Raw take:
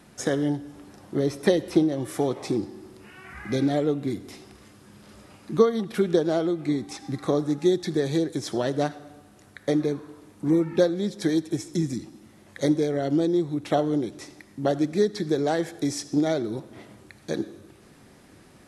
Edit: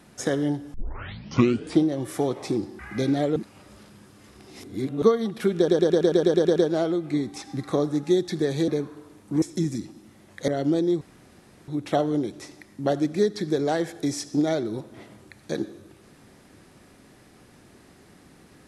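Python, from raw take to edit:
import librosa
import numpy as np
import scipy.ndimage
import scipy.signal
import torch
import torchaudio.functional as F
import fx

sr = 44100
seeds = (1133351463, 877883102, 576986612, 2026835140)

y = fx.edit(x, sr, fx.tape_start(start_s=0.74, length_s=1.08),
    fx.cut(start_s=2.79, length_s=0.54),
    fx.reverse_span(start_s=3.9, length_s=1.66),
    fx.stutter(start_s=6.11, slice_s=0.11, count=10),
    fx.cut(start_s=8.23, length_s=1.57),
    fx.cut(start_s=10.54, length_s=1.06),
    fx.cut(start_s=12.66, length_s=0.28),
    fx.insert_room_tone(at_s=13.47, length_s=0.67), tone=tone)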